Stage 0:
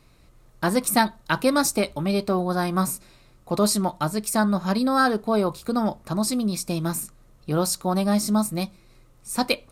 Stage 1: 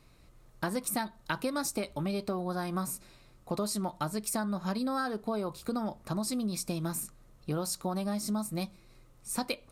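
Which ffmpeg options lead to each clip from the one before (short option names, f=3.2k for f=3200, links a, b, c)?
-af "acompressor=threshold=-25dB:ratio=6,volume=-4dB"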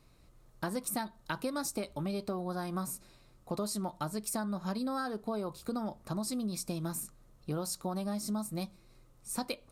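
-af "equalizer=f=2.2k:w=1.2:g=-3,volume=-2.5dB"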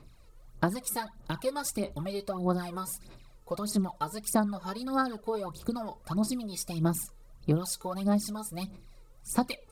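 -af "aphaser=in_gain=1:out_gain=1:delay=2.3:decay=0.71:speed=1.6:type=sinusoidal"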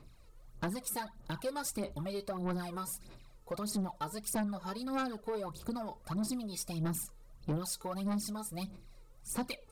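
-af "asoftclip=type=tanh:threshold=-26.5dB,volume=-2.5dB"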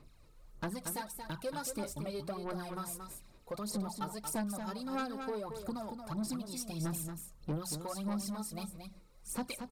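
-af "bandreject=f=60:t=h:w=6,bandreject=f=120:t=h:w=6,bandreject=f=180:t=h:w=6,aecho=1:1:229:0.447,volume=-2dB"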